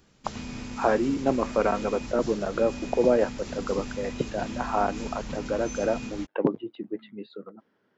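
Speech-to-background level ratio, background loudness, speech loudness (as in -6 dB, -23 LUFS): 9.5 dB, -37.5 LUFS, -28.0 LUFS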